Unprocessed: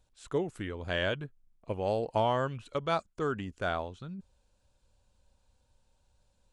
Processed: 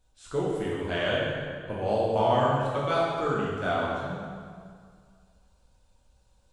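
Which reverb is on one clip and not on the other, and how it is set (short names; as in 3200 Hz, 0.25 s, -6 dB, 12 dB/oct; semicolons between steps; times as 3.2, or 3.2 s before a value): plate-style reverb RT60 2 s, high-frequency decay 0.75×, DRR -6.5 dB; gain -2 dB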